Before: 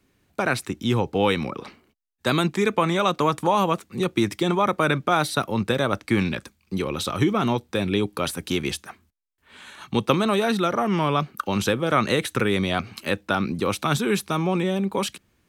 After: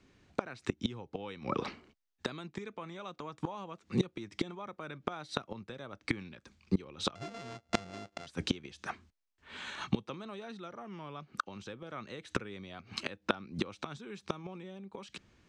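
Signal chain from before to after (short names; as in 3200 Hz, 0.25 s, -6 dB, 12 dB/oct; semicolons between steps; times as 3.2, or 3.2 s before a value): 7.15–8.27 sample sorter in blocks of 64 samples; LPF 6900 Hz 24 dB/oct; flipped gate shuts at -17 dBFS, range -24 dB; gain +1 dB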